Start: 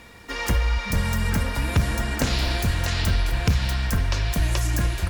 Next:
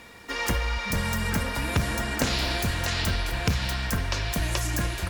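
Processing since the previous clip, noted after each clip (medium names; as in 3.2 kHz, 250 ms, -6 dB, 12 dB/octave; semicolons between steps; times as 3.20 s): bass shelf 120 Hz -8.5 dB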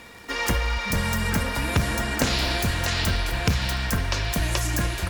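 crackle 63 per s -36 dBFS; trim +2.5 dB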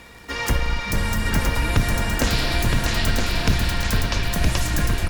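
octave divider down 2 oct, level +2 dB; on a send: delay 967 ms -4 dB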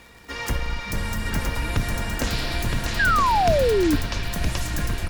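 painted sound fall, 2.99–3.96 s, 280–1700 Hz -15 dBFS; crackle 260 per s -39 dBFS; trim -4.5 dB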